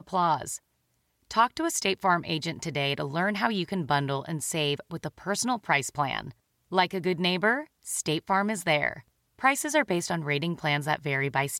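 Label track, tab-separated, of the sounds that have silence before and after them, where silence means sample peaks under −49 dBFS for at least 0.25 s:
1.310000	6.320000	sound
6.710000	9.010000	sound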